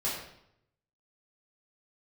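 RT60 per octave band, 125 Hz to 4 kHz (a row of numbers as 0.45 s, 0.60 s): 1.1 s, 0.80 s, 0.75 s, 0.70 s, 0.65 s, 0.60 s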